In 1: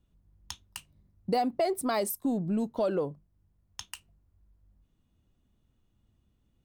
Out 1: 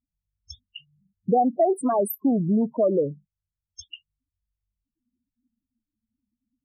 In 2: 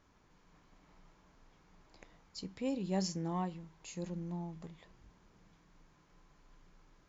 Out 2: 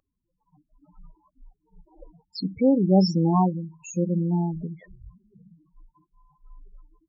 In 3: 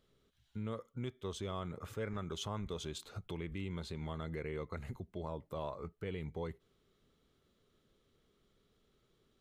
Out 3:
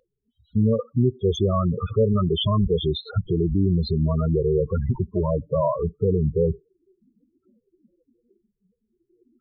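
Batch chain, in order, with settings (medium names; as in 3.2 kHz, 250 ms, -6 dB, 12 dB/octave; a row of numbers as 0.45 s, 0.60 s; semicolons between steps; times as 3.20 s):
loudest bins only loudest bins 8; spectral noise reduction 28 dB; normalise loudness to -23 LUFS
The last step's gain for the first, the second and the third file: +8.0 dB, +17.0 dB, +21.5 dB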